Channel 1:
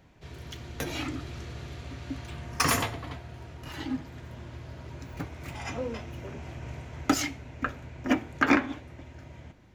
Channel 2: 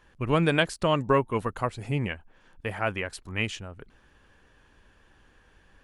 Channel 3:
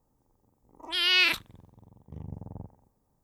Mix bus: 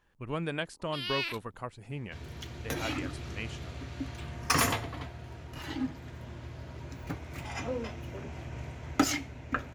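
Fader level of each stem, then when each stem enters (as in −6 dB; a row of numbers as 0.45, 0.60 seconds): −1.0, −11.0, −12.0 decibels; 1.90, 0.00, 0.00 seconds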